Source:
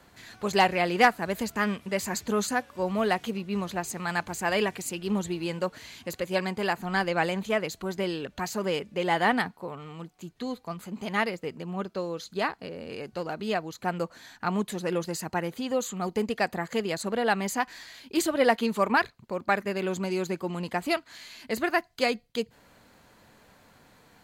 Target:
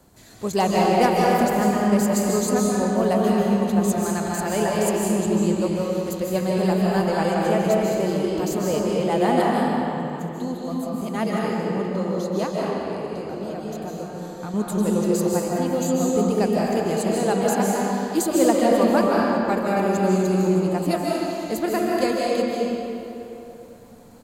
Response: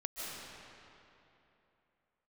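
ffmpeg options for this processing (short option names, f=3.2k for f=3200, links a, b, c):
-filter_complex "[0:a]firequalizer=gain_entry='entry(250,0);entry(1800,-13);entry(7500,1)':delay=0.05:min_phase=1,asettb=1/sr,asplit=3[a][b][c];[a]atrim=end=12.464[d];[b]atrim=start=12.46:end=14.54,asetpts=PTS-STARTPTS,afade=t=in:d=0.004:c=qsin,afade=t=out:st=2.076:d=0.004:c=qsin,acompressor=threshold=-37dB:ratio=6[e];[c]atrim=start=14.536[f];[d][e]acrossfade=d=0.004:c1=hsin:c2=qsin[g];[g][f]acrossfade=d=0.004:c1=qsin:c2=hsin[h];[1:a]atrim=start_sample=2205[i];[h][i]afir=irnorm=-1:irlink=0,volume=8dB"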